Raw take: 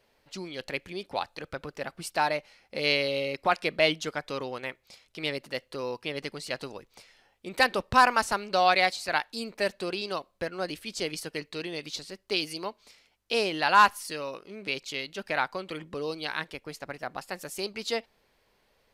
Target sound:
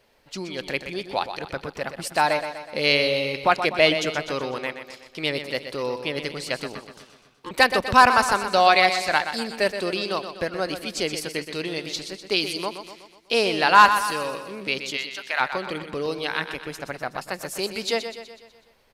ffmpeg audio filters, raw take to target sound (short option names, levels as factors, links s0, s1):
-filter_complex "[0:a]asettb=1/sr,asplit=3[s0][s1][s2];[s0]atrim=end=6.754[s3];[s1]atrim=start=6.75:end=7.51,asetpts=PTS-STARTPTS,afade=t=in:d=0.004:c=qsin,afade=t=out:st=0.756:d=0.004:c=qsin,aeval=exprs='val(0)*sin(2*PI*700*n/s)':c=same[s4];[s2]atrim=start=7.506[s5];[s3][s4]acrossfade=d=0.004:c1=hsin:c2=qsin[s6];[s6][s5]acrossfade=d=0.004:c1=qsin:c2=hsin,asplit=3[s7][s8][s9];[s7]afade=t=out:st=14.96:d=0.02[s10];[s8]highpass=960,afade=t=in:st=14.96:d=0.02,afade=t=out:st=15.39:d=0.02[s11];[s9]afade=t=in:st=15.39:d=0.02[s12];[s10][s11][s12]amix=inputs=3:normalize=0,asettb=1/sr,asplit=3[s13][s14][s15];[s13]atrim=end=16.094[s16];[s14]atrim=start=16.09:end=16.81,asetpts=PTS-STARTPTS,afade=t=in:d=0.004:c=qsin,afade=t=out:st=0.716:d=0.004:c=qsin,bandreject=f=4500:w=7.7[s17];[s15]atrim=start=16.806[s18];[s16][s17]acrossfade=d=0.004:c1=hsin:c2=qsin[s19];[s19][s18]acrossfade=d=0.004:c1=qsin:c2=hsin,aecho=1:1:124|248|372|496|620|744:0.335|0.178|0.0941|0.0499|0.0264|0.014,volume=1.88"